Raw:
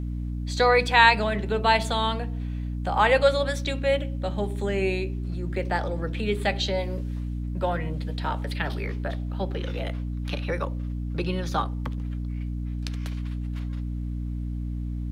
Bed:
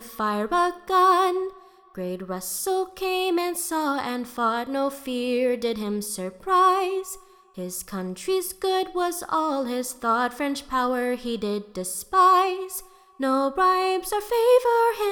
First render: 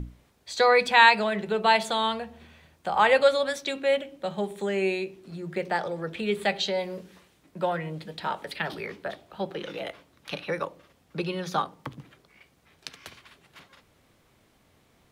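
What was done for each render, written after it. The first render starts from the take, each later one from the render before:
mains-hum notches 60/120/180/240/300 Hz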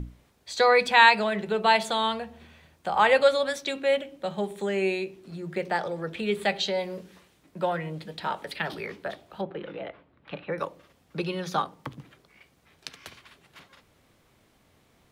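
0:09.41–0:10.58: high-frequency loss of the air 470 metres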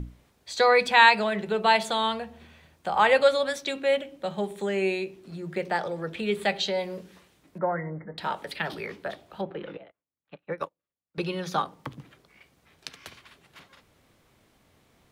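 0:07.58–0:08.18: linear-phase brick-wall low-pass 2,200 Hz
0:09.77–0:11.18: expander for the loud parts 2.5 to 1, over −52 dBFS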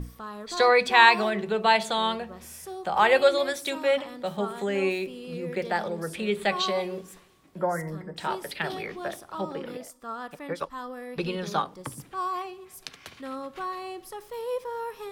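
mix in bed −14 dB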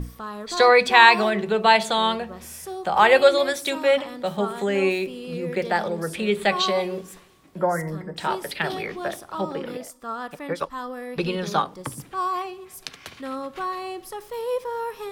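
level +4.5 dB
brickwall limiter −1 dBFS, peak gain reduction 1.5 dB

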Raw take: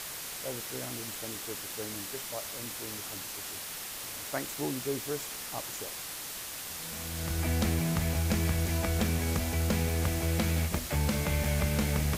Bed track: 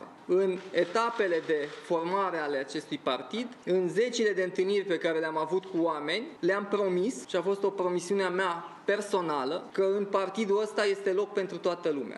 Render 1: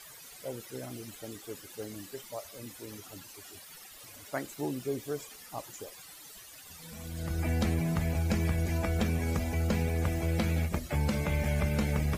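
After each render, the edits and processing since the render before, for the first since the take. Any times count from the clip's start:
broadband denoise 15 dB, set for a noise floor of −40 dBFS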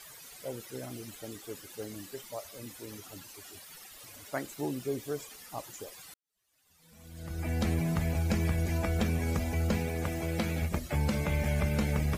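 0:06.14–0:07.72: fade in quadratic
0:09.77–0:10.62: high-pass filter 130 Hz 6 dB per octave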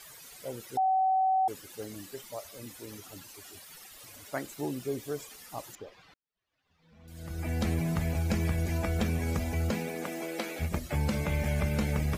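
0:00.77–0:01.48: beep over 759 Hz −22.5 dBFS
0:05.75–0:07.08: high-frequency loss of the air 250 metres
0:09.70–0:10.59: high-pass filter 140 Hz → 330 Hz 24 dB per octave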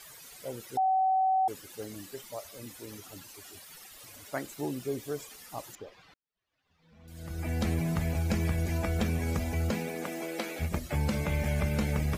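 no processing that can be heard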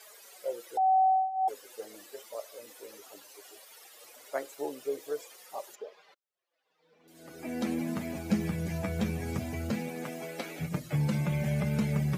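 flanger 0.17 Hz, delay 4.6 ms, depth 5.9 ms, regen −13%
high-pass filter sweep 490 Hz → 130 Hz, 0:06.59–0:08.87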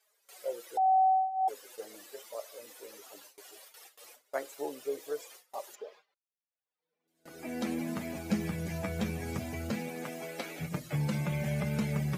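noise gate with hold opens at −41 dBFS
low-shelf EQ 390 Hz −3.5 dB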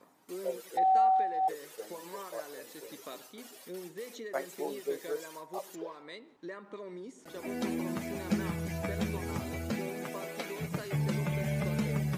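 mix in bed track −16 dB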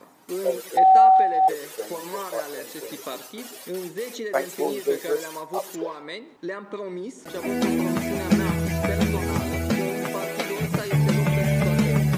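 level +11 dB

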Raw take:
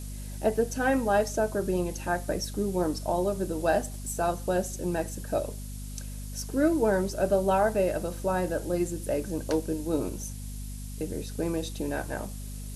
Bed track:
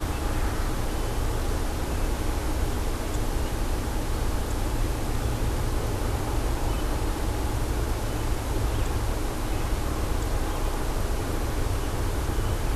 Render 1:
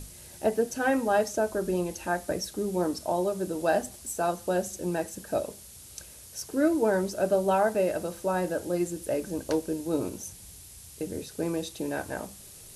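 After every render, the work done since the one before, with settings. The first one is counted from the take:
mains-hum notches 50/100/150/200/250 Hz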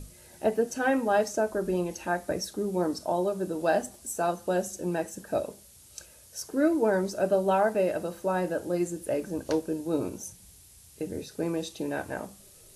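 noise reduction from a noise print 6 dB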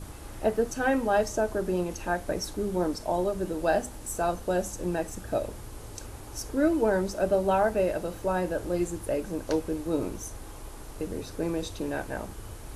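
mix in bed track −15.5 dB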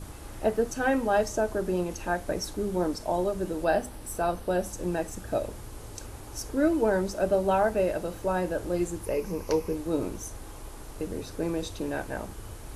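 0:03.64–0:04.73: parametric band 6,900 Hz −10.5 dB 0.31 octaves
0:09.05–0:09.75: EQ curve with evenly spaced ripples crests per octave 0.82, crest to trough 9 dB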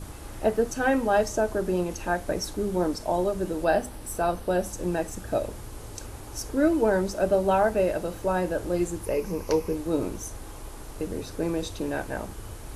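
level +2 dB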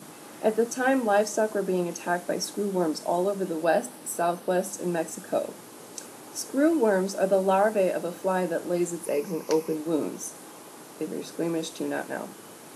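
Butterworth high-pass 160 Hz 36 dB per octave
dynamic equaliser 8,800 Hz, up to +4 dB, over −49 dBFS, Q 1.2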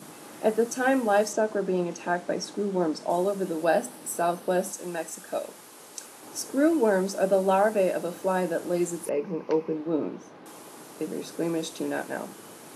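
0:01.33–0:03.10: high-frequency loss of the air 66 metres
0:04.72–0:06.23: low-shelf EQ 490 Hz −10 dB
0:09.09–0:10.46: high-frequency loss of the air 300 metres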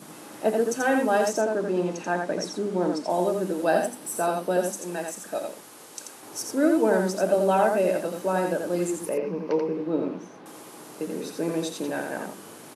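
single-tap delay 85 ms −4.5 dB

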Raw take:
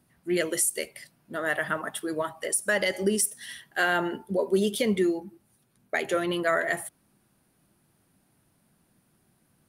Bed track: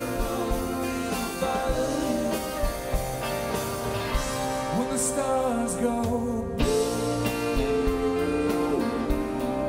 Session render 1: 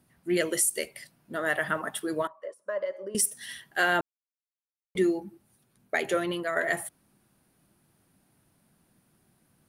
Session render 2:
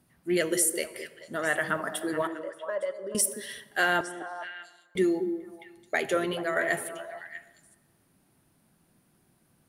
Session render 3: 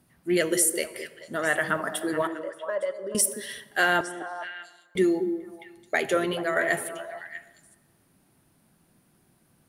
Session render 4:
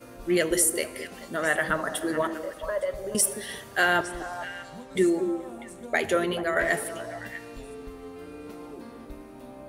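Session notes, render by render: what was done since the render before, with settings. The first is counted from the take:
0:02.27–0:03.15: pair of resonant band-passes 780 Hz, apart 0.82 octaves; 0:04.01–0:04.95: silence; 0:06.11–0:06.56: fade out, to −8 dB
echo through a band-pass that steps 215 ms, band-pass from 330 Hz, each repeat 1.4 octaves, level −5.5 dB; dense smooth reverb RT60 1.5 s, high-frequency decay 0.6×, DRR 15 dB
level +2.5 dB
mix in bed track −16.5 dB

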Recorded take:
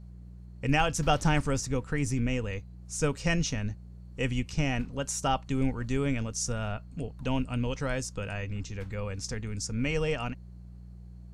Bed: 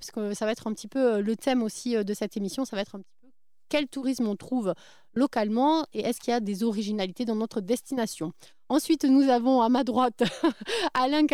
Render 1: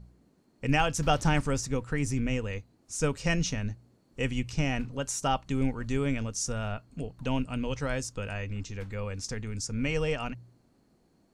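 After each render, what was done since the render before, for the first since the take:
hum removal 60 Hz, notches 3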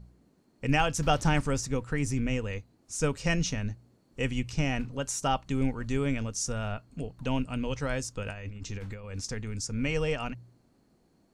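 0:08.23–0:09.21: compressor whose output falls as the input rises −37 dBFS, ratio −0.5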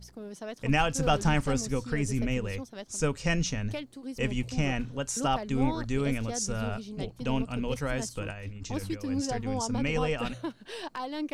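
mix in bed −11.5 dB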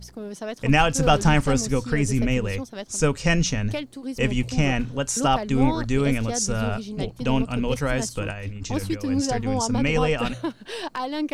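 level +7 dB

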